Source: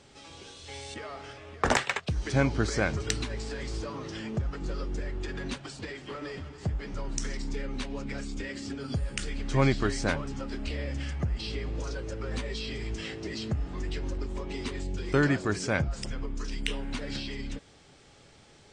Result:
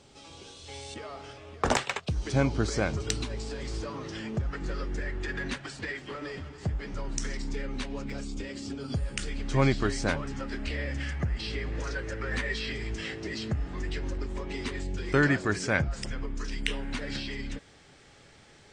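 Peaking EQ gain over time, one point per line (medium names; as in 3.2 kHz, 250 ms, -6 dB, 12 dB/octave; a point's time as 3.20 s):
peaking EQ 1.8 kHz 0.68 oct
-5 dB
from 3.65 s +1.5 dB
from 4.50 s +8.5 dB
from 5.99 s +2 dB
from 8.10 s -6 dB
from 8.90 s 0 dB
from 10.22 s +7.5 dB
from 11.72 s +13.5 dB
from 12.72 s +5 dB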